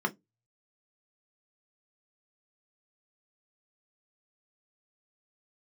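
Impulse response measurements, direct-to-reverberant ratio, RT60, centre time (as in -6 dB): 3.0 dB, 0.15 s, 5 ms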